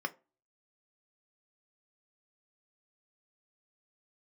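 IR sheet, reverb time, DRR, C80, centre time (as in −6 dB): 0.30 s, 6.0 dB, 27.5 dB, 3 ms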